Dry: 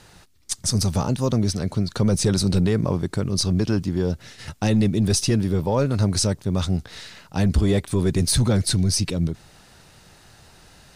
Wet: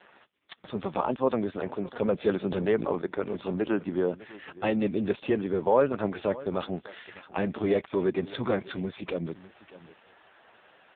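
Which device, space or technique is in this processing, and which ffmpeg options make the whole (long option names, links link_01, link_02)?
satellite phone: -af "highpass=400,lowpass=3200,aecho=1:1:603:0.126,volume=3dB" -ar 8000 -c:a libopencore_amrnb -b:a 4750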